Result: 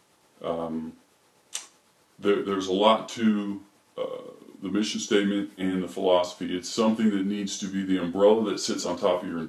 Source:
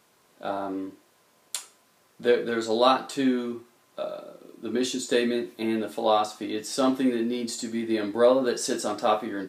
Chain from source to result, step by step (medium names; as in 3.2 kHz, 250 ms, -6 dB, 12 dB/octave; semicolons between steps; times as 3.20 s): rotating-head pitch shifter -3 st; trim +1.5 dB